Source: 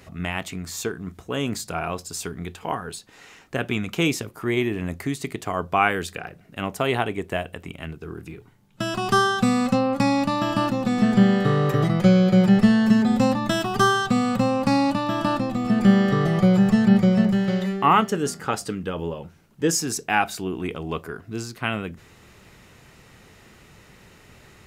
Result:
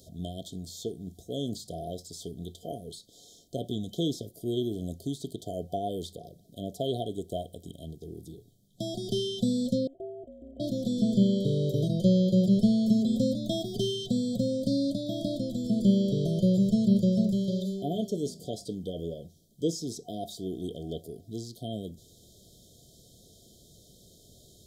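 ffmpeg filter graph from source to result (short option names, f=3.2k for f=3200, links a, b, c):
-filter_complex "[0:a]asettb=1/sr,asplit=3[a][b][c];[a]atrim=end=9.874[d];[b]atrim=start=9.87:end=10.6,asetpts=PTS-STARTPTS,afade=t=in:d=0.004:c=qsin,afade=t=out:st=0.726:d=0.004:c=qsin,acontrast=72,lowpass=f=2.5k:t=q:w=0.5098,lowpass=f=2.5k:t=q:w=0.6013,lowpass=f=2.5k:t=q:w=0.9,lowpass=f=2.5k:t=q:w=2.563,afreqshift=-2900[e];[c]atrim=start=10.596[f];[d][e]acrossfade=d=0.004:c1=hsin:c2=qsin[g];[g][f]acrossfade=d=0.004:c1=qsin:c2=hsin,acrossover=split=3700[h][i];[i]acompressor=threshold=-48dB:ratio=4:attack=1:release=60[j];[h][j]amix=inputs=2:normalize=0,afftfilt=real='re*(1-between(b*sr/4096,730,3100))':imag='im*(1-between(b*sr/4096,730,3100))':win_size=4096:overlap=0.75,highshelf=f=2.9k:g=8.5,volume=-6.5dB"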